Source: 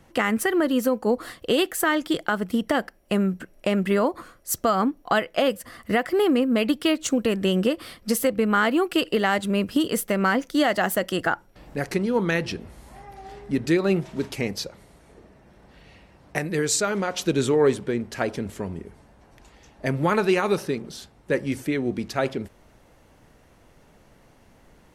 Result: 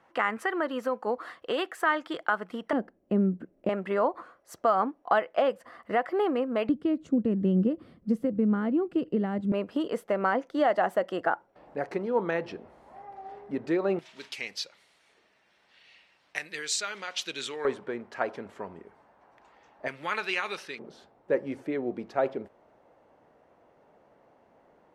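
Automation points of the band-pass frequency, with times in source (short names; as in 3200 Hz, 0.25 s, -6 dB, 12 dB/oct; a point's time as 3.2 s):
band-pass, Q 1.1
1100 Hz
from 2.73 s 280 Hz
from 3.69 s 830 Hz
from 6.69 s 190 Hz
from 9.52 s 710 Hz
from 13.99 s 3200 Hz
from 17.65 s 980 Hz
from 19.88 s 2600 Hz
from 20.79 s 660 Hz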